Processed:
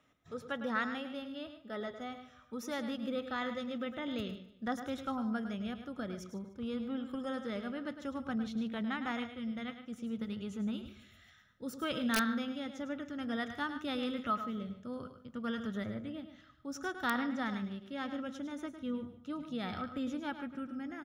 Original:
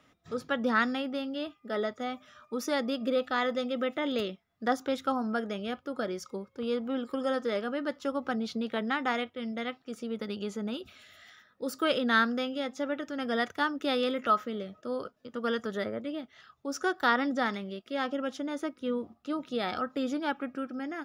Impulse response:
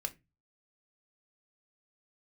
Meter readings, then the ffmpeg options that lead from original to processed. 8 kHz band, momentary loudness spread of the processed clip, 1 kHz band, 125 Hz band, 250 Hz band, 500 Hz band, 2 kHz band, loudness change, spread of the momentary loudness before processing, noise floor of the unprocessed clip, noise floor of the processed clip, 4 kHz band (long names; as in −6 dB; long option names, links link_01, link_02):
−4.0 dB, 10 LU, −8.0 dB, can't be measured, −3.5 dB, −10.5 dB, −7.5 dB, −6.5 dB, 10 LU, −68 dBFS, −61 dBFS, −7.5 dB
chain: -filter_complex "[0:a]bandreject=frequency=4700:width=6.2,asplit=2[link_01][link_02];[link_02]aecho=0:1:149|298|447:0.15|0.0479|0.0153[link_03];[link_01][link_03]amix=inputs=2:normalize=0,asubboost=boost=7.5:cutoff=150,asplit=2[link_04][link_05];[link_05]aecho=0:1:105:0.316[link_06];[link_04][link_06]amix=inputs=2:normalize=0,aeval=exprs='(mod(4.22*val(0)+1,2)-1)/4.22':channel_layout=same,volume=-7.5dB"